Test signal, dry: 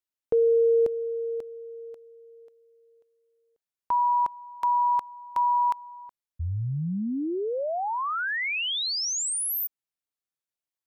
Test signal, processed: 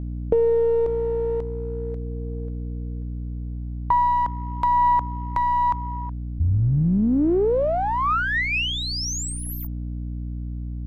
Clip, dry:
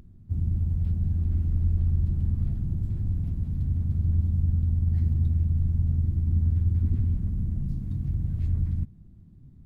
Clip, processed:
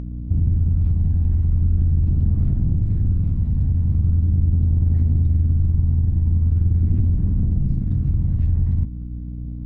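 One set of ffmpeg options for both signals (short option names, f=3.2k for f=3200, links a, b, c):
-filter_complex "[0:a]aeval=exprs='val(0)+0.0112*(sin(2*PI*60*n/s)+sin(2*PI*2*60*n/s)/2+sin(2*PI*3*60*n/s)/3+sin(2*PI*4*60*n/s)/4+sin(2*PI*5*60*n/s)/5)':c=same,asplit=2[a][b];[b]aeval=exprs='clip(val(0),-1,0.0141)':c=same,volume=-5.5dB[c];[a][c]amix=inputs=2:normalize=0,acompressor=threshold=-26dB:ratio=6:attack=65:release=22,aemphasis=mode=reproduction:type=75kf,aphaser=in_gain=1:out_gain=1:delay=1.2:decay=0.24:speed=0.41:type=triangular,volume=5dB"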